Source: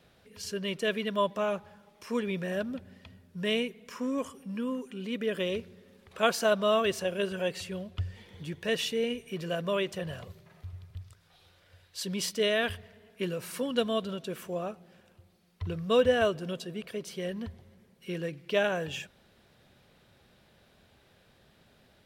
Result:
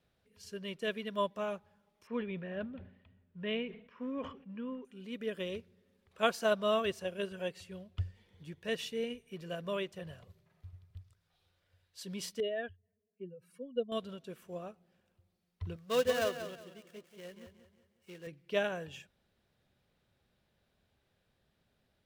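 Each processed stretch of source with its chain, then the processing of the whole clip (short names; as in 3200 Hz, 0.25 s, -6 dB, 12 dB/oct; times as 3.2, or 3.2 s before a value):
2.07–4.85 LPF 3200 Hz 24 dB/oct + sustainer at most 73 dB/s
12.4–13.92 spectral contrast raised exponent 2 + upward expander, over -49 dBFS
15.76–18.27 switching dead time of 0.11 ms + low shelf 250 Hz -11 dB + feedback echo 0.183 s, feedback 42%, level -7 dB
whole clip: low shelf 100 Hz +6 dB; upward expander 1.5:1, over -44 dBFS; gain -3.5 dB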